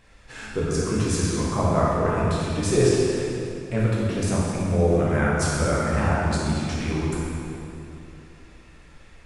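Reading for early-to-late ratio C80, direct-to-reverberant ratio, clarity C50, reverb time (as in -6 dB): -1.0 dB, -7.0 dB, -3.0 dB, 2.8 s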